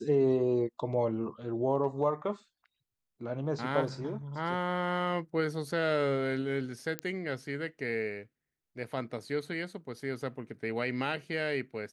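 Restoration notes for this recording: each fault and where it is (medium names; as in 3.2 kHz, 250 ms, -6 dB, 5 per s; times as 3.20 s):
6.99 s: pop -18 dBFS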